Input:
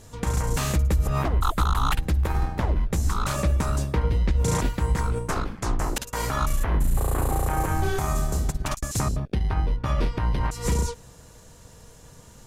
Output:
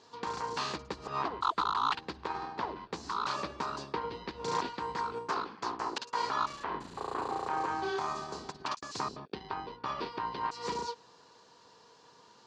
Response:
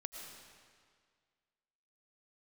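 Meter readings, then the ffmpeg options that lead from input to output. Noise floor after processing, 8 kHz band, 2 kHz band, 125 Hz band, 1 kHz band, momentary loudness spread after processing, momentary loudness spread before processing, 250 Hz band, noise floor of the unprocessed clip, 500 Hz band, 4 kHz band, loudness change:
-60 dBFS, -16.0 dB, -6.0 dB, -26.5 dB, -2.0 dB, 8 LU, 5 LU, -13.0 dB, -49 dBFS, -7.5 dB, -3.5 dB, -10.0 dB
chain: -af "highpass=360,equalizer=f=400:t=q:w=4:g=3,equalizer=f=590:t=q:w=4:g=-7,equalizer=f=1000:t=q:w=4:g=8,equalizer=f=2100:t=q:w=4:g=-4,equalizer=f=4500:t=q:w=4:g=7,lowpass=f=5200:w=0.5412,lowpass=f=5200:w=1.3066,volume=0.531"

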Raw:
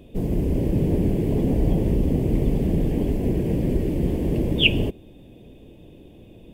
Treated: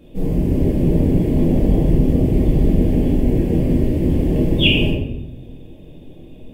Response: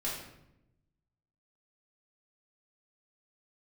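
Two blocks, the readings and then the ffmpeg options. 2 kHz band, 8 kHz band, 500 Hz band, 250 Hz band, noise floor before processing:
+3.0 dB, no reading, +4.5 dB, +6.0 dB, -47 dBFS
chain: -filter_complex "[1:a]atrim=start_sample=2205,asetrate=43659,aresample=44100[s0];[0:a][s0]afir=irnorm=-1:irlink=0"

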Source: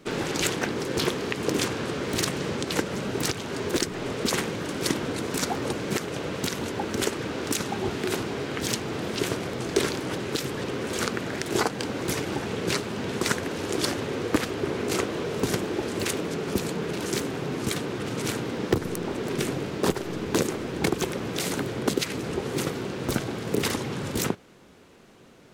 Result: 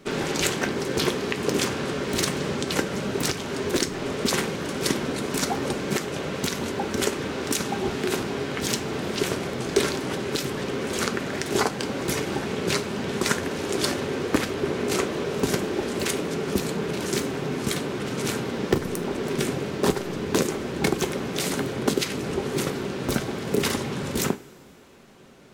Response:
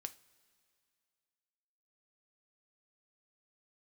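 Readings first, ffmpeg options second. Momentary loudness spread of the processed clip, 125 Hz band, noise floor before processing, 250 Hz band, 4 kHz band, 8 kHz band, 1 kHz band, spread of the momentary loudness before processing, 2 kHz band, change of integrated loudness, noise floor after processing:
4 LU, +1.0 dB, -36 dBFS, +1.5 dB, +2.0 dB, +2.0 dB, +2.0 dB, 4 LU, +2.0 dB, +2.0 dB, -33 dBFS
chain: -filter_complex "[1:a]atrim=start_sample=2205[s0];[0:a][s0]afir=irnorm=-1:irlink=0,volume=1.88"

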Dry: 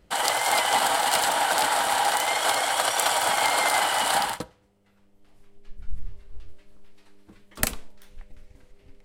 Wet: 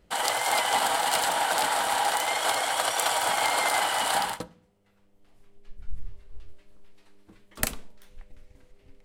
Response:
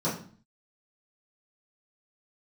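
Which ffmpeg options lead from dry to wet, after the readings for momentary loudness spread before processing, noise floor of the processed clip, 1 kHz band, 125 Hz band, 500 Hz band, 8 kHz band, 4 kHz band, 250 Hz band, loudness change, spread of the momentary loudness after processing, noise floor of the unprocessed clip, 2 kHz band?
7 LU, -63 dBFS, -2.5 dB, -2.5 dB, -2.0 dB, -2.5 dB, -2.5 dB, -2.5 dB, -2.5 dB, 7 LU, -61 dBFS, -2.5 dB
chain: -filter_complex "[0:a]asplit=2[s0][s1];[1:a]atrim=start_sample=2205[s2];[s1][s2]afir=irnorm=-1:irlink=0,volume=0.0376[s3];[s0][s3]amix=inputs=2:normalize=0,volume=0.75"

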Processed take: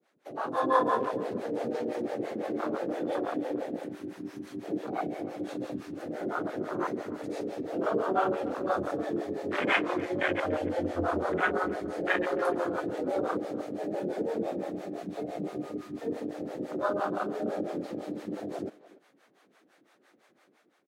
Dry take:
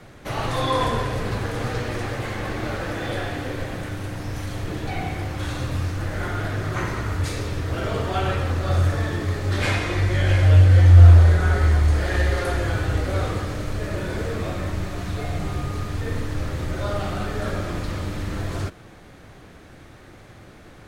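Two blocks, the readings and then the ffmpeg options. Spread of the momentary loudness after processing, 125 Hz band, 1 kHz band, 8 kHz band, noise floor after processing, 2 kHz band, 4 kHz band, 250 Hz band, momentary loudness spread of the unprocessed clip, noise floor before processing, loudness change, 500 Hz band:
10 LU, -28.0 dB, -2.5 dB, under -15 dB, -66 dBFS, -5.5 dB, -12.0 dB, -2.0 dB, 13 LU, -46 dBFS, -10.0 dB, -1.0 dB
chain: -filter_complex "[0:a]afwtdn=0.0501,highpass=f=240:w=0.5412,highpass=f=240:w=1.3066,dynaudnorm=f=150:g=7:m=2.82,acrossover=split=490[s0][s1];[s0]aeval=exprs='val(0)*(1-1/2+1/2*cos(2*PI*5.9*n/s))':c=same[s2];[s1]aeval=exprs='val(0)*(1-1/2-1/2*cos(2*PI*5.9*n/s))':c=same[s3];[s2][s3]amix=inputs=2:normalize=0,asplit=2[s4][s5];[s5]adelay=290,highpass=300,lowpass=3400,asoftclip=type=hard:threshold=0.158,volume=0.126[s6];[s4][s6]amix=inputs=2:normalize=0,volume=0.668"

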